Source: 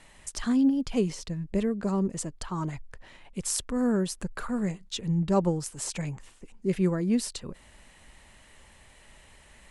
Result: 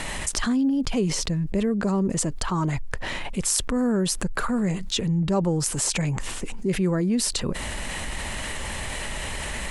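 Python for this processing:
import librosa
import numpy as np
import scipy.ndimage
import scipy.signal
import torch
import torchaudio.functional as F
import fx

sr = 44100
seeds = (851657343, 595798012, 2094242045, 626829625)

y = fx.env_flatten(x, sr, amount_pct=70)
y = F.gain(torch.from_numpy(y), -1.0).numpy()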